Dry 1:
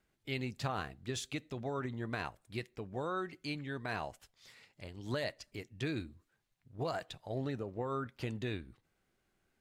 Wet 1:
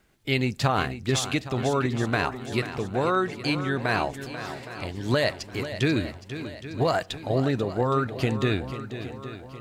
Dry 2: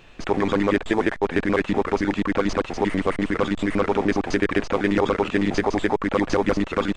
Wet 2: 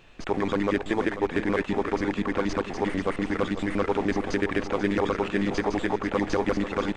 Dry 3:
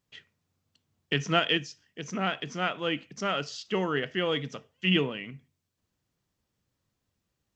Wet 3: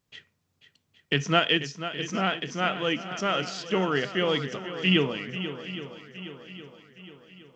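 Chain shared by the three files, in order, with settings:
swung echo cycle 0.816 s, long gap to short 1.5:1, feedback 44%, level -11.5 dB; match loudness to -27 LUFS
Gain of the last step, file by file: +13.5, -4.5, +2.5 dB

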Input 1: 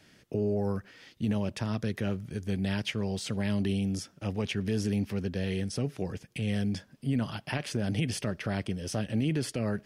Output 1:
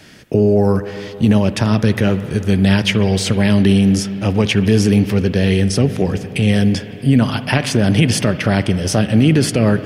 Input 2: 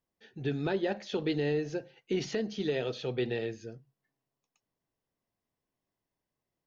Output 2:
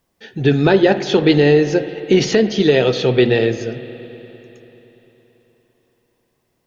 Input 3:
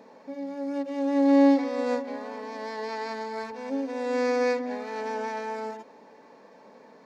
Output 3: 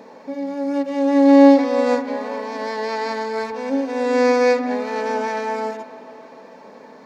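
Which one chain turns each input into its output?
spring tank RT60 3.8 s, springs 52/56 ms, chirp 35 ms, DRR 11.5 dB; normalise peaks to -2 dBFS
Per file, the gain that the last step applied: +16.5, +18.0, +8.5 dB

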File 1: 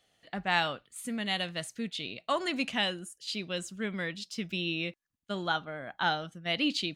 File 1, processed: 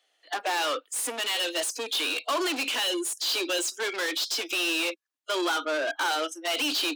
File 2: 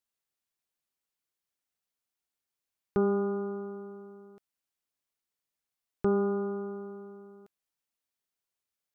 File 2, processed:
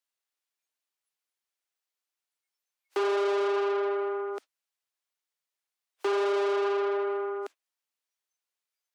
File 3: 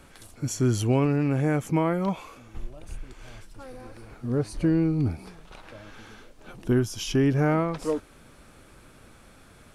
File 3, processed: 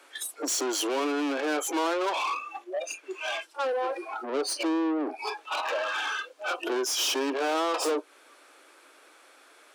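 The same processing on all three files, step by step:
compressor 4:1, threshold -32 dBFS; spectral noise reduction 25 dB; overdrive pedal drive 33 dB, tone 7600 Hz, clips at -19.5 dBFS; dynamic EQ 2000 Hz, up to -7 dB, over -48 dBFS, Q 4.5; steep high-pass 280 Hz 72 dB/oct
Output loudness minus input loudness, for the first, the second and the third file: +5.5, +3.0, -3.5 LU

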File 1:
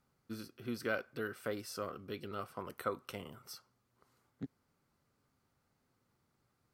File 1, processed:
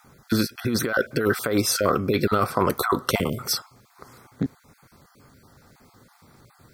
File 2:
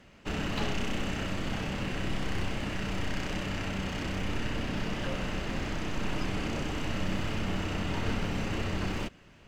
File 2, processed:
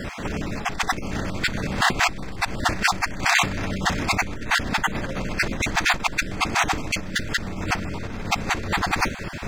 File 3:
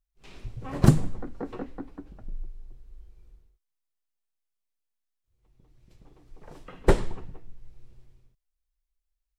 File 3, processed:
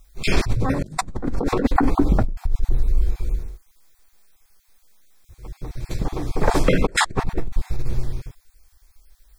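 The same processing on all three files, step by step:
random spectral dropouts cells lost 21%; notch 2900 Hz, Q 5.5; negative-ratio compressor -43 dBFS, ratio -1; match loudness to -24 LUFS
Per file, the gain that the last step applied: +22.5, +17.0, +20.5 dB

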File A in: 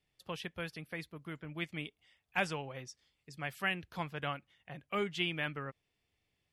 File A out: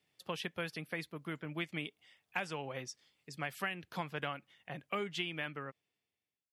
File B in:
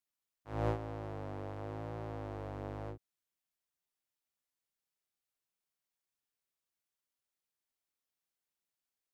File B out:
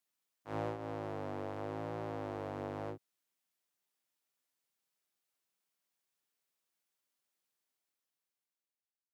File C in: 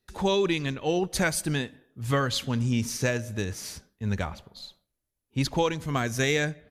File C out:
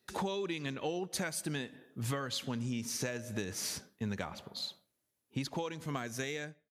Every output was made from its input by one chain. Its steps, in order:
ending faded out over 1.64 s; HPF 150 Hz 12 dB/oct; compressor 12:1, threshold -37 dBFS; gain +4 dB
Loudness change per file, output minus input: -2.0, 0.0, -10.0 LU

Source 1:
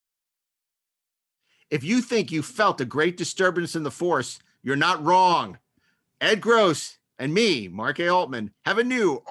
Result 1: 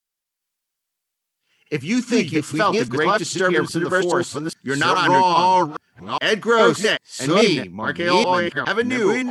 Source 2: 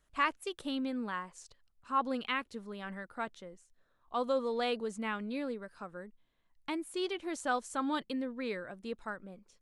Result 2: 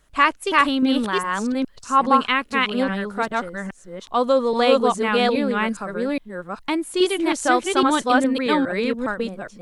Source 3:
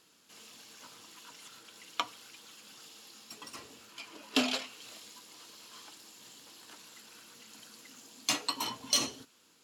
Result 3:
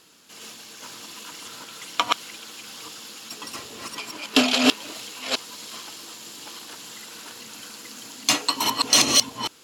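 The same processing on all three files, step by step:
reverse delay 0.412 s, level 0 dB; MP3 112 kbps 48000 Hz; normalise peaks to -2 dBFS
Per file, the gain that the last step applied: +2.0, +14.0, +10.5 dB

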